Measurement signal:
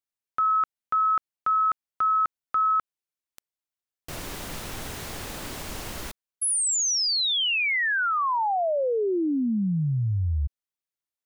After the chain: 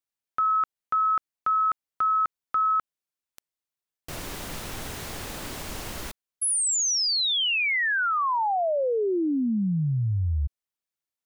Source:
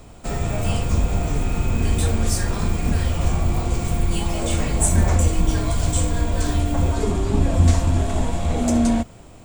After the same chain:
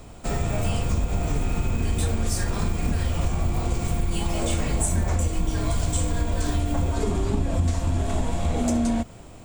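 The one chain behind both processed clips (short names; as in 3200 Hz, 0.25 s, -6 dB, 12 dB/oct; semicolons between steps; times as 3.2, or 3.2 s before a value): compressor, threshold -19 dBFS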